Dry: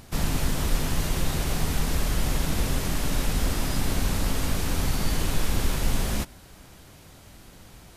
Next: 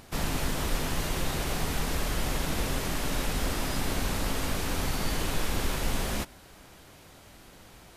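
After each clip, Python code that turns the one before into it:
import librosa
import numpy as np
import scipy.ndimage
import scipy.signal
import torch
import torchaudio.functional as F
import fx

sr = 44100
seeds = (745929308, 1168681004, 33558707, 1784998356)

y = fx.bass_treble(x, sr, bass_db=-6, treble_db=-3)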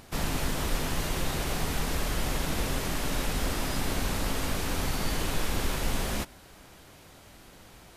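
y = x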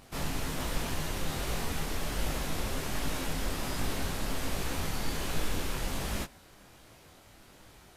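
y = fx.detune_double(x, sr, cents=45)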